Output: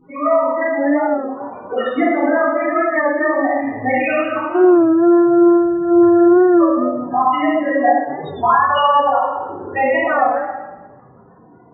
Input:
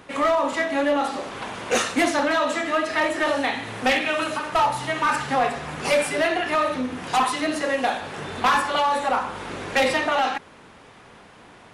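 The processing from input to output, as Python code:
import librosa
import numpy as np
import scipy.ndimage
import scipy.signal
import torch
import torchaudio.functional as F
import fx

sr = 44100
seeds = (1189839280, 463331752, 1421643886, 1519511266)

y = fx.sample_sort(x, sr, block=128, at=(4.48, 6.6), fade=0.02)
y = fx.peak_eq(y, sr, hz=12000.0, db=4.5, octaves=0.58)
y = fx.spec_gate(y, sr, threshold_db=-20, keep='strong')
y = fx.dynamic_eq(y, sr, hz=160.0, q=1.8, threshold_db=-45.0, ratio=4.0, max_db=-4)
y = fx.spec_topn(y, sr, count=8)
y = fx.rider(y, sr, range_db=10, speed_s=2.0)
y = fx.room_shoebox(y, sr, seeds[0], volume_m3=850.0, walls='mixed', distance_m=3.3)
y = fx.record_warp(y, sr, rpm=33.33, depth_cents=100.0)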